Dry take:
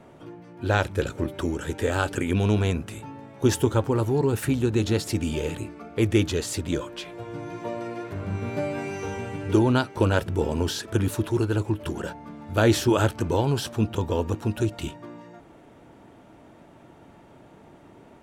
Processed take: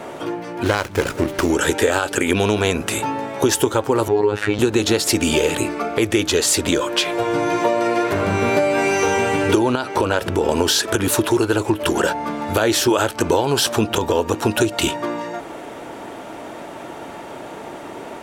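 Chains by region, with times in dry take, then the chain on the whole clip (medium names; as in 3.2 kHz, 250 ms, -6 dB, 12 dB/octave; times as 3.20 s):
0.63–1.50 s: peaking EQ 650 Hz -7.5 dB 2.5 oct + sliding maximum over 9 samples
4.08–4.59 s: low-pass 3.2 kHz + robot voice 104 Hz
9.75–10.49 s: treble shelf 5.6 kHz -5.5 dB + compression 5:1, threshold -27 dBFS
whole clip: tone controls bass -14 dB, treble +2 dB; compression 6:1, threshold -34 dBFS; loudness maximiser +23.5 dB; trim -3.5 dB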